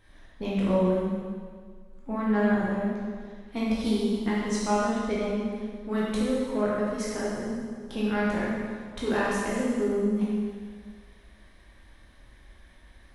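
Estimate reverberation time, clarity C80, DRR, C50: 1.8 s, 0.0 dB, -7.0 dB, -2.0 dB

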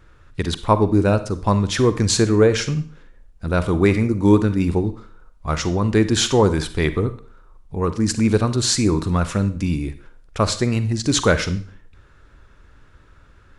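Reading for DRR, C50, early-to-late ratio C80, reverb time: 12.0 dB, 13.5 dB, 17.5 dB, 0.45 s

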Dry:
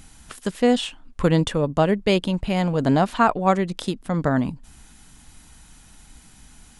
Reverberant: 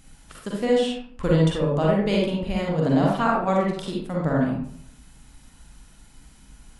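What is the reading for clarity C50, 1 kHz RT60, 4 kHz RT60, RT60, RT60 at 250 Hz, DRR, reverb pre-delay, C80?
-0.5 dB, 0.60 s, 0.35 s, 0.65 s, 0.75 s, -3.5 dB, 39 ms, 4.5 dB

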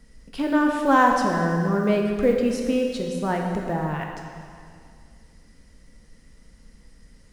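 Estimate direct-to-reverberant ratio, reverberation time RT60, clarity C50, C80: 1.0 dB, 2.2 s, 3.0 dB, 4.0 dB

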